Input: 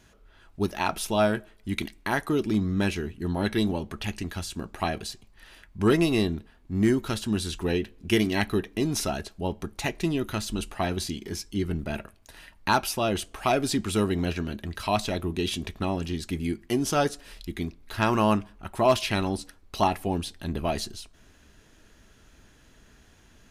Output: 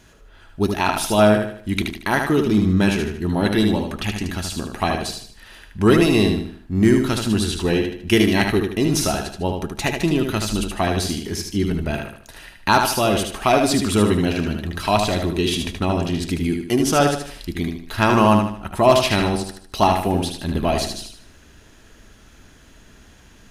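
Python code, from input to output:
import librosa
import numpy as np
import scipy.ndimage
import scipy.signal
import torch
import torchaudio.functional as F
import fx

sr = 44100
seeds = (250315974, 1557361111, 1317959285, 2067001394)

y = fx.echo_feedback(x, sr, ms=76, feedback_pct=39, wet_db=-5.0)
y = y * 10.0 ** (6.5 / 20.0)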